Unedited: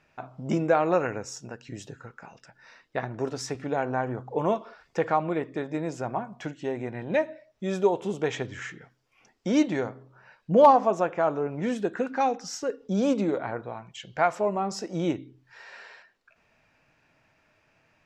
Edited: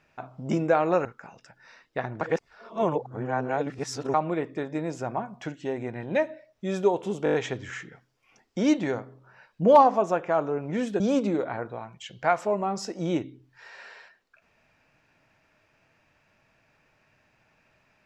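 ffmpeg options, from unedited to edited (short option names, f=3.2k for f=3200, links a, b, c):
-filter_complex "[0:a]asplit=10[a][b][c][d][e][f][g][h][i][j];[a]atrim=end=1.052[k];[b]atrim=start=2.038:end=3.202[l];[c]atrim=start=3.198:end=5.132,asetpts=PTS-STARTPTS,areverse[m];[d]atrim=start=5.128:end=8.252[n];[e]atrim=start=8.228:end=8.252[o];[f]atrim=start=8.228:end=8.252[p];[g]atrim=start=8.228:end=8.252[q];[h]atrim=start=8.228:end=8.252[r];[i]atrim=start=8.228:end=11.892[s];[j]atrim=start=12.938[t];[k][l]acrossfade=d=0.004:c1=hsin:c2=hsin[u];[u][m]acrossfade=d=0.004:c1=hsin:c2=hsin[v];[v][n]acrossfade=d=0.004:c1=hsin:c2=hsin[w];[w][o]acrossfade=d=0.004:c1=hsin:c2=hsin[x];[x][p]acrossfade=d=0.004:c1=hsin:c2=hsin[y];[y][q]acrossfade=d=0.004:c1=hsin:c2=hsin[z];[z][r]acrossfade=d=0.004:c1=hsin:c2=hsin[aa];[aa][s]acrossfade=d=0.004:c1=hsin:c2=hsin[ab];[ab][t]acrossfade=d=0.004:c1=hsin:c2=hsin"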